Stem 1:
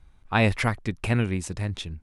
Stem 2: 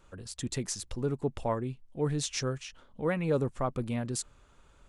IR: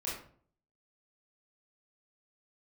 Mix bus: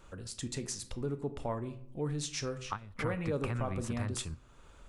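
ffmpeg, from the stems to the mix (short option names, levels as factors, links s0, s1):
-filter_complex "[0:a]acrossover=split=200[s0][s1];[s1]acompressor=threshold=0.02:ratio=6[s2];[s0][s2]amix=inputs=2:normalize=0,equalizer=f=1200:t=o:w=0.81:g=14,acompressor=threshold=0.0562:ratio=6,adelay=2400,volume=1.33[s3];[1:a]volume=1.33,asplit=3[s4][s5][s6];[s5]volume=0.299[s7];[s6]apad=whole_len=195048[s8];[s3][s8]sidechaingate=range=0.141:threshold=0.00501:ratio=16:detection=peak[s9];[2:a]atrim=start_sample=2205[s10];[s7][s10]afir=irnorm=-1:irlink=0[s11];[s9][s4][s11]amix=inputs=3:normalize=0,acompressor=threshold=0.00355:ratio=1.5"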